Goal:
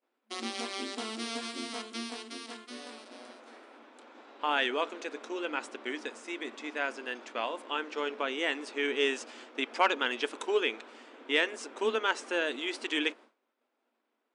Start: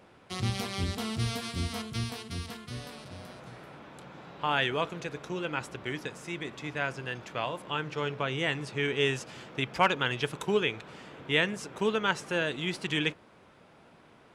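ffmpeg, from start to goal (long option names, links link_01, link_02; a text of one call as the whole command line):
ffmpeg -i in.wav -af "agate=range=-33dB:threshold=-43dB:ratio=3:detection=peak,acontrast=47,afftfilt=real='re*between(b*sr/4096,220,10000)':imag='im*between(b*sr/4096,220,10000)':win_size=4096:overlap=0.75,volume=-6.5dB" out.wav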